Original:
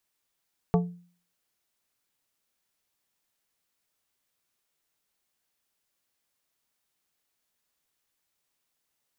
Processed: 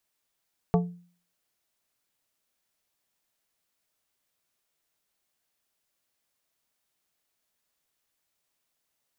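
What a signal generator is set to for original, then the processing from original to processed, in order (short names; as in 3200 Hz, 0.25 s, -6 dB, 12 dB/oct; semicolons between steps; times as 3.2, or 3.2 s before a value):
glass hit plate, lowest mode 175 Hz, decay 0.46 s, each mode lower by 4 dB, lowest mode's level -17 dB
bell 640 Hz +4 dB 0.21 oct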